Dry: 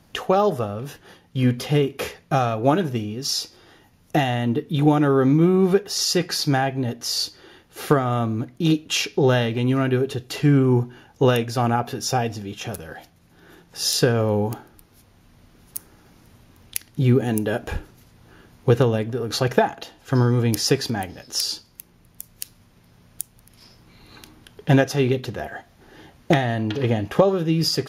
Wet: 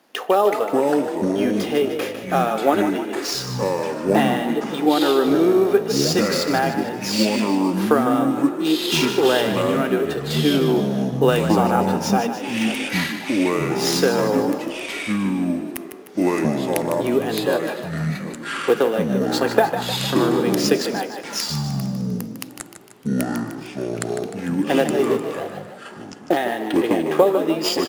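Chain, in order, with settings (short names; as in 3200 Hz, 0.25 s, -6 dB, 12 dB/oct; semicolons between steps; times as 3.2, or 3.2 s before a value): 24.72–26.37 median filter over 25 samples; HPF 280 Hz 24 dB/oct; in parallel at -4 dB: sample-rate reducer 12000 Hz, jitter 0%; on the sum: echoes that change speed 0.314 s, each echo -6 st, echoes 2; on a send: frequency-shifting echo 0.152 s, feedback 53%, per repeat +38 Hz, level -9.5 dB; on the sum: spring tank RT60 2.2 s, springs 50 ms, DRR 19 dB; gain -2.5 dB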